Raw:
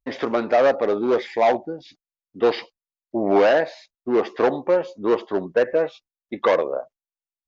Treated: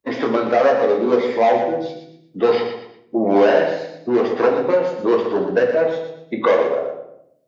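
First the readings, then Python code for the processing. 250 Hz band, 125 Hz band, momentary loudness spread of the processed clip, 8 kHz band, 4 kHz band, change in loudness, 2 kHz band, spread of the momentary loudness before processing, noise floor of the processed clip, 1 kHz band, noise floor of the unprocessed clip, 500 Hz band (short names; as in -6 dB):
+4.5 dB, +5.0 dB, 12 LU, n/a, +2.0 dB, +3.0 dB, +2.5 dB, 13 LU, -54 dBFS, +3.0 dB, under -85 dBFS, +3.5 dB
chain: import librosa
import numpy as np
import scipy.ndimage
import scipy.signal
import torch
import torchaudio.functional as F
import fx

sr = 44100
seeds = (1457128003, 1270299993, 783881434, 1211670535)

y = fx.spec_quant(x, sr, step_db=15)
y = scipy.signal.sosfilt(scipy.signal.butter(2, 100.0, 'highpass', fs=sr, output='sos'), y)
y = fx.echo_feedback(y, sr, ms=118, feedback_pct=29, wet_db=-9.0)
y = fx.room_shoebox(y, sr, seeds[0], volume_m3=81.0, walls='mixed', distance_m=0.68)
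y = fx.band_squash(y, sr, depth_pct=40)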